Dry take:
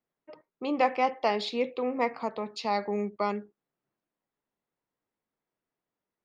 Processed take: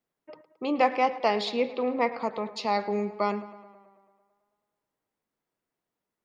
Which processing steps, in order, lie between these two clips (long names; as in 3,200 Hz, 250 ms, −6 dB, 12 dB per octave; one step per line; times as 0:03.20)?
0:01.52–0:02.19: Butterworth low-pass 5,700 Hz
on a send: tape delay 109 ms, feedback 69%, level −15 dB, low-pass 4,200 Hz
on the sum: level +2 dB